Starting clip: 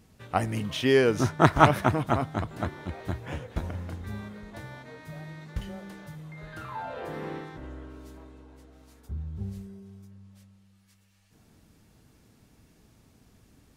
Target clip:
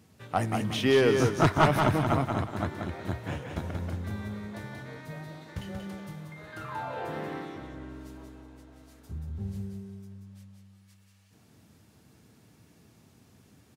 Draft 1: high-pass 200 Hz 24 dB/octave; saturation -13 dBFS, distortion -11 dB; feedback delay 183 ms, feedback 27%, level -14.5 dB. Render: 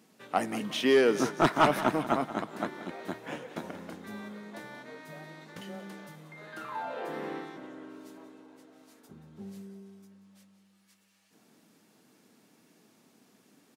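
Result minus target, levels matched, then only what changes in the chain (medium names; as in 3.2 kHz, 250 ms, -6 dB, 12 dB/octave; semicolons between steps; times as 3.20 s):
125 Hz band -12.0 dB; echo-to-direct -9.5 dB
change: high-pass 77 Hz 24 dB/octave; change: feedback delay 183 ms, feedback 27%, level -5 dB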